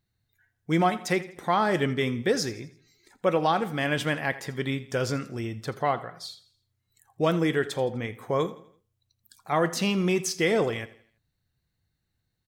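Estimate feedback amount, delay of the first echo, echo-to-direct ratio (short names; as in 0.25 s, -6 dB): 44%, 83 ms, -16.5 dB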